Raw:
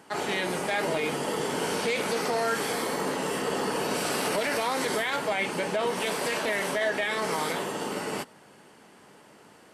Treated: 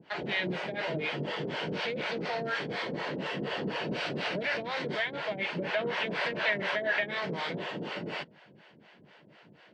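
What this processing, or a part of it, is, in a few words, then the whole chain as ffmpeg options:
guitar amplifier with harmonic tremolo: -filter_complex "[0:a]acrossover=split=520[link_01][link_02];[link_01]aeval=exprs='val(0)*(1-1/2+1/2*cos(2*PI*4.1*n/s))':channel_layout=same[link_03];[link_02]aeval=exprs='val(0)*(1-1/2-1/2*cos(2*PI*4.1*n/s))':channel_layout=same[link_04];[link_03][link_04]amix=inputs=2:normalize=0,asoftclip=type=tanh:threshold=-24.5dB,highpass=89,equalizer=frequency=150:width_type=q:width=4:gain=4,equalizer=frequency=260:width_type=q:width=4:gain=-6,equalizer=frequency=430:width_type=q:width=4:gain=-6,equalizer=frequency=830:width_type=q:width=4:gain=-7,equalizer=frequency=1200:width_type=q:width=4:gain=-10,lowpass=frequency=3900:width=0.5412,lowpass=frequency=3900:width=1.3066,asettb=1/sr,asplit=3[link_05][link_06][link_07];[link_05]atrim=end=5.644[link_08];[link_06]atrim=start=5.64:end=7.11,asetpts=PTS-STARTPTS,afade=type=in:duration=0.004:curve=qsin,afade=type=out:start_time=1.466:duration=0.004:curve=qsin,equalizer=frequency=1500:width_type=o:width=1.7:gain=5.5[link_09];[link_07]atrim=start=7.106[link_10];[link_08][link_09]acrossfade=duration=0.004:curve1=hsin:curve2=qsin[link_11];[link_11][link_10]acrossfade=duration=0.004:curve1=qsin:curve2=hsin,volume=4.5dB"

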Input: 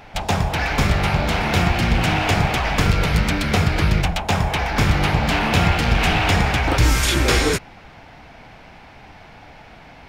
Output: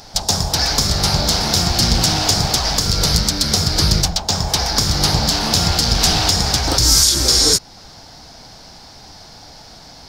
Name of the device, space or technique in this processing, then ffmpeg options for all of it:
over-bright horn tweeter: -filter_complex "[0:a]highshelf=frequency=3500:width_type=q:width=3:gain=12.5,alimiter=limit=-2.5dB:level=0:latency=1:release=282,asettb=1/sr,asplit=3[link_01][link_02][link_03];[link_01]atrim=end=4.094[link_04];[link_02]atrim=start=4.09:end=4.49,asetpts=PTS-STARTPTS,afade=type=in:duration=0.004:curve=qsin,afade=type=out:start_time=0.396:duration=0.004:curve=qsin,equalizer=frequency=11000:width=1.5:gain=-10.5[link_05];[link_03]atrim=start=4.486[link_06];[link_04][link_05]acrossfade=duration=0.004:curve1=hsin:curve2=qsin[link_07];[link_07][link_06]acrossfade=duration=0.004:curve1=qsin:curve2=hsin,volume=1dB"

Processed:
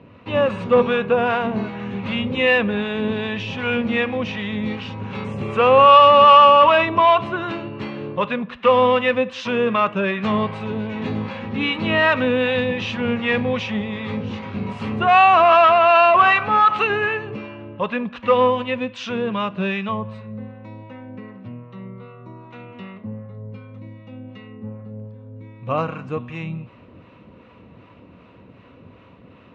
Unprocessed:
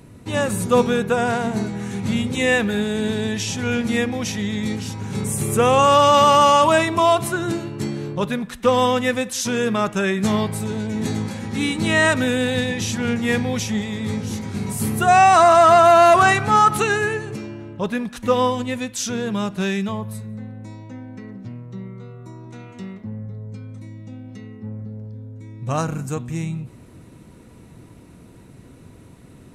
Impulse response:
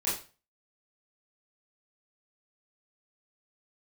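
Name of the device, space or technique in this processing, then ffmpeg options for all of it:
guitar amplifier with harmonic tremolo: -filter_complex "[0:a]acrossover=split=640[link_01][link_02];[link_01]aeval=exprs='val(0)*(1-0.5/2+0.5/2*cos(2*PI*2.6*n/s))':channel_layout=same[link_03];[link_02]aeval=exprs='val(0)*(1-0.5/2-0.5/2*cos(2*PI*2.6*n/s))':channel_layout=same[link_04];[link_03][link_04]amix=inputs=2:normalize=0,asoftclip=type=tanh:threshold=-13dB,highpass=83,equalizer=frequency=140:width_type=q:width=4:gain=-7,equalizer=frequency=350:width_type=q:width=4:gain=-4,equalizer=frequency=540:width_type=q:width=4:gain=7,equalizer=frequency=1100:width_type=q:width=4:gain=9,equalizer=frequency=2700:width_type=q:width=4:gain=8,lowpass=frequency=3500:width=0.5412,lowpass=frequency=3500:width=1.3066,asettb=1/sr,asplit=3[link_05][link_06][link_07];[link_05]atrim=end=15.674[link_08];[link_06]atrim=start=15.67:end=16.9,asetpts=PTS-STARTPTS,afade=type=in:duration=0.004:curve=qsin,afade=type=out:start_time=1.226:duration=0.004:curve=qsin,lowshelf=frequency=380:gain=-6[link_09];[link_07]atrim=start=16.896[link_10];[link_08][link_09]acrossfade=duration=0.004:curve1=hsin:curve2=qsin[link_11];[link_11][link_10]acrossfade=duration=0.004:curve1=qsin:curve2=hsin,volume=2dB"

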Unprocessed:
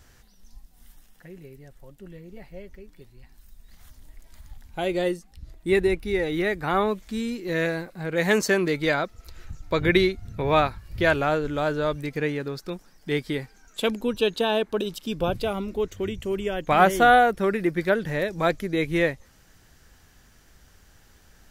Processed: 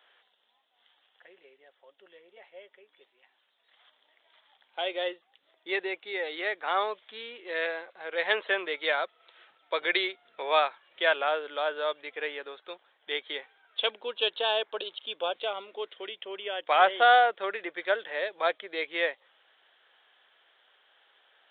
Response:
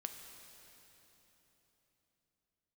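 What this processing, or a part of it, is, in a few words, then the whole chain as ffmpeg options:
musical greeting card: -af "aresample=8000,aresample=44100,highpass=frequency=510:width=0.5412,highpass=frequency=510:width=1.3066,equalizer=frequency=3300:width_type=o:width=0.32:gain=9,volume=-3dB"

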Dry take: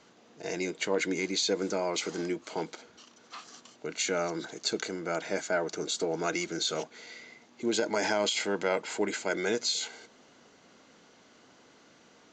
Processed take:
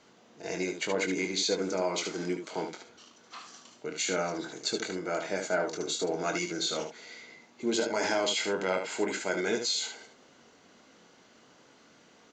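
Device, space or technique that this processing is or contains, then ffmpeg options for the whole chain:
slapback doubling: -filter_complex "[0:a]asplit=3[link_01][link_02][link_03];[link_02]adelay=22,volume=-7dB[link_04];[link_03]adelay=74,volume=-6.5dB[link_05];[link_01][link_04][link_05]amix=inputs=3:normalize=0,volume=-1.5dB"

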